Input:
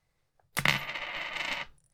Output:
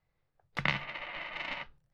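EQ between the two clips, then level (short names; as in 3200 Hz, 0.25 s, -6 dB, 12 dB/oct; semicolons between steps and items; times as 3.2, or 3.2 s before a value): air absorption 220 m; -2.0 dB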